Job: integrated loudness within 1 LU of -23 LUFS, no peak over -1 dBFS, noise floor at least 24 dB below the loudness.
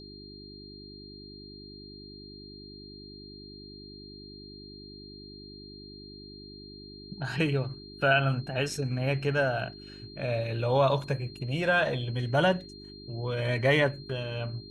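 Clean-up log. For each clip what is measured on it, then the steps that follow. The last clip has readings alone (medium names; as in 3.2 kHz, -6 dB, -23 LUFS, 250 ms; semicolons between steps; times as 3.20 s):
hum 50 Hz; highest harmonic 400 Hz; hum level -45 dBFS; steady tone 4.2 kHz; tone level -48 dBFS; loudness -28.5 LUFS; peak level -10.5 dBFS; loudness target -23.0 LUFS
-> de-hum 50 Hz, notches 8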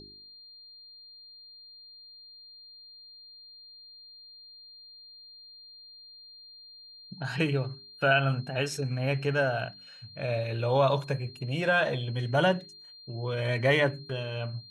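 hum not found; steady tone 4.2 kHz; tone level -48 dBFS
-> band-stop 4.2 kHz, Q 30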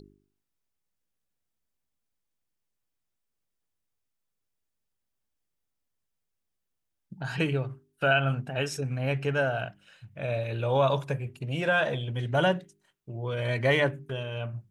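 steady tone not found; loudness -28.5 LUFS; peak level -10.0 dBFS; loudness target -23.0 LUFS
-> trim +5.5 dB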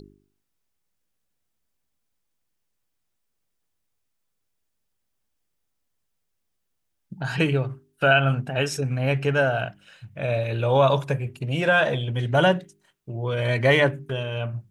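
loudness -23.0 LUFS; peak level -4.5 dBFS; noise floor -76 dBFS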